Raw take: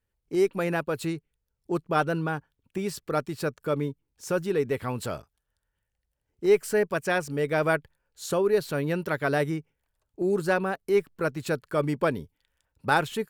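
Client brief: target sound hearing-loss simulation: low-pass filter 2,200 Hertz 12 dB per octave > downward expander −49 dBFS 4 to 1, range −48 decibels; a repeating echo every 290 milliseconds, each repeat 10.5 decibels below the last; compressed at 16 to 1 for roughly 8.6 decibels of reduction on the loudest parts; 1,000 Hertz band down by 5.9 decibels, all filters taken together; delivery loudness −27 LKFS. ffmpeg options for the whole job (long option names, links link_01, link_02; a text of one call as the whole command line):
ffmpeg -i in.wav -af "equalizer=frequency=1000:width_type=o:gain=-8.5,acompressor=threshold=-26dB:ratio=16,lowpass=2200,aecho=1:1:290|580|870:0.299|0.0896|0.0269,agate=range=-48dB:threshold=-49dB:ratio=4,volume=6.5dB" out.wav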